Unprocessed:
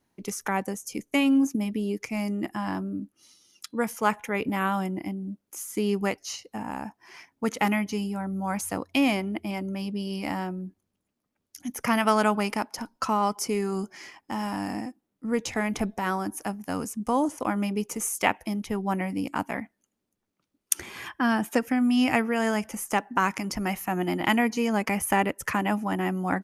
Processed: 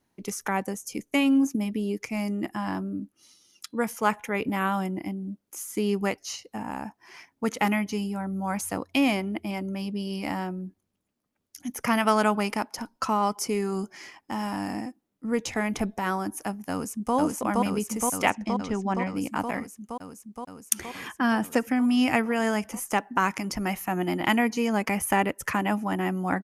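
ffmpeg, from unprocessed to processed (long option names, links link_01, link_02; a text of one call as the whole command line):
ffmpeg -i in.wav -filter_complex "[0:a]asplit=2[link_01][link_02];[link_02]afade=type=in:start_time=16.71:duration=0.01,afade=type=out:start_time=17.15:duration=0.01,aecho=0:1:470|940|1410|1880|2350|2820|3290|3760|4230|4700|5170|5640:1|0.8|0.64|0.512|0.4096|0.32768|0.262144|0.209715|0.167772|0.134218|0.107374|0.0858993[link_03];[link_01][link_03]amix=inputs=2:normalize=0,asettb=1/sr,asplit=3[link_04][link_05][link_06];[link_04]atrim=end=18.304[link_07];[link_05]atrim=start=18.3:end=19.16,asetpts=PTS-STARTPTS,afade=type=in:duration=0.004:curve=qsin,afade=type=out:start_time=0.856:duration=0.004:curve=qsin,lowpass=frequency=7000:width=0.5412,lowpass=frequency=7000:width=1.3066[link_08];[link_06]atrim=start=19.156[link_09];[link_07][link_08]acrossfade=duration=0.004:curve1=hsin:curve2=qsin[link_10];[link_10][link_09]acrossfade=duration=0.004:curve1=qsin:curve2=hsin" out.wav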